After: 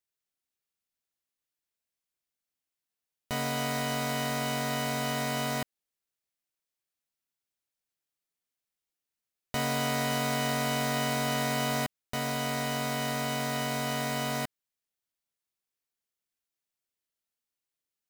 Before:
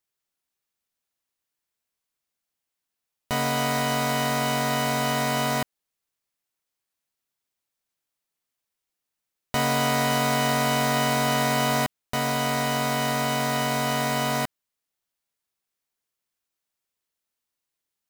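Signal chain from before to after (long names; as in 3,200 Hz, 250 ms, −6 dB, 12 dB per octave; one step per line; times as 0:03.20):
parametric band 1,000 Hz −3.5 dB 0.85 octaves
level −5.5 dB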